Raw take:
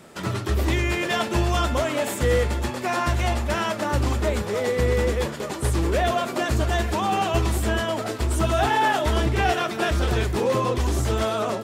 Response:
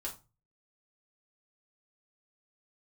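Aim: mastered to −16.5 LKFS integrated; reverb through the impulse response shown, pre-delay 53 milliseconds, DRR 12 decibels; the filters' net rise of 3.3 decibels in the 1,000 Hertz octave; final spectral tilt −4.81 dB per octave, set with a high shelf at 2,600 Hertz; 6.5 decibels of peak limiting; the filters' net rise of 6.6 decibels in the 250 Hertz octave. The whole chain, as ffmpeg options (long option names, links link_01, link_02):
-filter_complex "[0:a]equalizer=frequency=250:width_type=o:gain=8.5,equalizer=frequency=1000:width_type=o:gain=3,highshelf=frequency=2600:gain=5.5,alimiter=limit=-13.5dB:level=0:latency=1,asplit=2[link_01][link_02];[1:a]atrim=start_sample=2205,adelay=53[link_03];[link_02][link_03]afir=irnorm=-1:irlink=0,volume=-12dB[link_04];[link_01][link_04]amix=inputs=2:normalize=0,volume=6dB"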